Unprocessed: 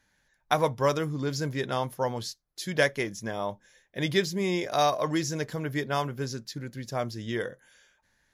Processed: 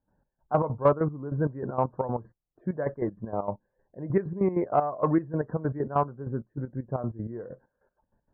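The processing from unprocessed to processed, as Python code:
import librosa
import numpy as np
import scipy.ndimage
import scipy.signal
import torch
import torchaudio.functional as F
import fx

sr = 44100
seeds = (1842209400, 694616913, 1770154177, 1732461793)

p1 = scipy.signal.sosfilt(scipy.signal.butter(4, 1300.0, 'lowpass', fs=sr, output='sos'), x)
p2 = fx.step_gate(p1, sr, bpm=194, pattern='.xx..x.x.x.x.x..', floor_db=-12.0, edge_ms=4.5)
p3 = fx.spec_topn(p2, sr, count=64)
p4 = fx.env_lowpass(p3, sr, base_hz=840.0, full_db=-18.5)
p5 = 10.0 ** (-19.5 / 20.0) * np.tanh(p4 / 10.0 ** (-19.5 / 20.0))
p6 = p4 + (p5 * librosa.db_to_amplitude(-7.0))
y = p6 * librosa.db_to_amplitude(2.5)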